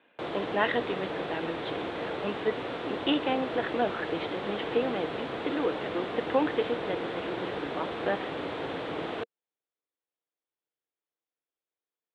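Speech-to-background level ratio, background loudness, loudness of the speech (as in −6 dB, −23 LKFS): 2.5 dB, −35.0 LKFS, −32.5 LKFS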